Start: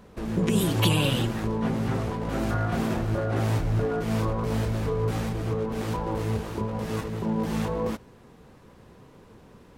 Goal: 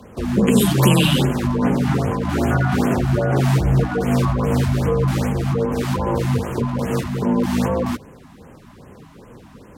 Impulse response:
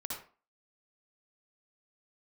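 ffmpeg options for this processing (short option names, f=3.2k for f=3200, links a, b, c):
-af "afreqshift=23,afftfilt=real='re*(1-between(b*sr/1024,400*pow(4800/400,0.5+0.5*sin(2*PI*2.5*pts/sr))/1.41,400*pow(4800/400,0.5+0.5*sin(2*PI*2.5*pts/sr))*1.41))':imag='im*(1-between(b*sr/1024,400*pow(4800/400,0.5+0.5*sin(2*PI*2.5*pts/sr))/1.41,400*pow(4800/400,0.5+0.5*sin(2*PI*2.5*pts/sr))*1.41))':win_size=1024:overlap=0.75,volume=8.5dB"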